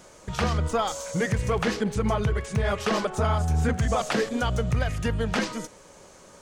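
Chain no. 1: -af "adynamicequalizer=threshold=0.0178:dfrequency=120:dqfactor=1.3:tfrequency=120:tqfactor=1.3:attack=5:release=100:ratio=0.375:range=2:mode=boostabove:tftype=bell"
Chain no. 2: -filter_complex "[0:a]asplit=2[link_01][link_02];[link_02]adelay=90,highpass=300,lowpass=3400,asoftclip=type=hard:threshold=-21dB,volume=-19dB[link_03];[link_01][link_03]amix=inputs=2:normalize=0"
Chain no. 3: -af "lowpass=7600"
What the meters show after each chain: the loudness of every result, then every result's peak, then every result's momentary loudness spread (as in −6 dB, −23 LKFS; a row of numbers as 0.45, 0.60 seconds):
−25.0, −26.5, −26.5 LKFS; −10.5, −12.0, −12.0 dBFS; 5, 4, 4 LU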